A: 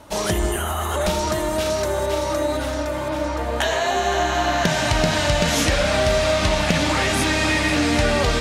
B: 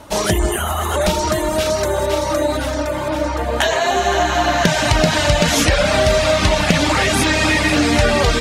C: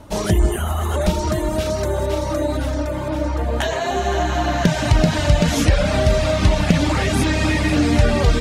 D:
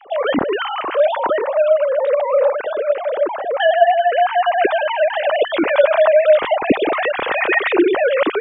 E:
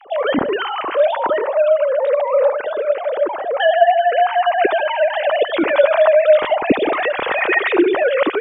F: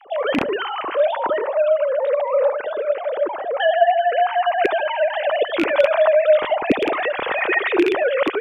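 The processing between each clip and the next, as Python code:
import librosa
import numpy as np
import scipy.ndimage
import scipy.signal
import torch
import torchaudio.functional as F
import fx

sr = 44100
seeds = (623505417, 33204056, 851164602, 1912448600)

y1 = fx.dereverb_blind(x, sr, rt60_s=0.54)
y1 = y1 * 10.0 ** (5.5 / 20.0)
y2 = fx.low_shelf(y1, sr, hz=370.0, db=11.0)
y2 = y2 * 10.0 ** (-7.5 / 20.0)
y3 = fx.sine_speech(y2, sr)
y3 = y3 * 10.0 ** (1.5 / 20.0)
y4 = fx.echo_feedback(y3, sr, ms=73, feedback_pct=28, wet_db=-16)
y5 = fx.rattle_buzz(y4, sr, strikes_db=-24.0, level_db=-6.0)
y5 = y5 * 10.0 ** (-3.0 / 20.0)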